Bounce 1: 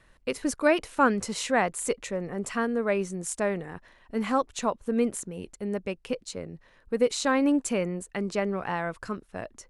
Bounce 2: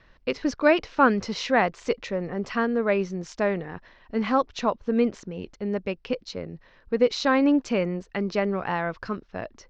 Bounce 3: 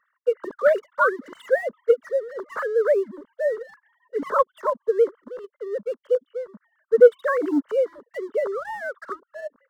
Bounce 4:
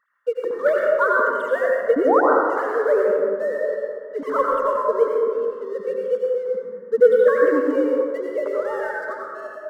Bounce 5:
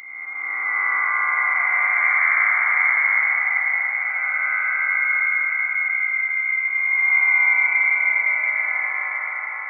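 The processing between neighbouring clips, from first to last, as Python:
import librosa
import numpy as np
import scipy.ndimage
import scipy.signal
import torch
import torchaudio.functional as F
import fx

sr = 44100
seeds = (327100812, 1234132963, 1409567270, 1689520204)

y1 = scipy.signal.sosfilt(scipy.signal.butter(8, 5700.0, 'lowpass', fs=sr, output='sos'), x)
y1 = y1 * 10.0 ** (3.0 / 20.0)
y2 = fx.sine_speech(y1, sr)
y2 = fx.leveller(y2, sr, passes=1)
y2 = fx.fixed_phaser(y2, sr, hz=500.0, stages=8)
y2 = y2 * 10.0 ** (1.0 / 20.0)
y3 = fx.spec_paint(y2, sr, seeds[0], shape='rise', start_s=1.96, length_s=0.25, low_hz=250.0, high_hz=1600.0, level_db=-17.0)
y3 = y3 + 10.0 ** (-12.0 / 20.0) * np.pad(y3, (int(82 * sr / 1000.0), 0))[:len(y3)]
y3 = fx.rev_plate(y3, sr, seeds[1], rt60_s=2.0, hf_ratio=0.35, predelay_ms=80, drr_db=-2.5)
y3 = y3 * 10.0 ** (-2.0 / 20.0)
y4 = fx.spec_blur(y3, sr, span_ms=699.0)
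y4 = fx.echo_feedback(y4, sr, ms=678, feedback_pct=41, wet_db=-4.5)
y4 = fx.freq_invert(y4, sr, carrier_hz=2600)
y4 = y4 * 10.0 ** (1.5 / 20.0)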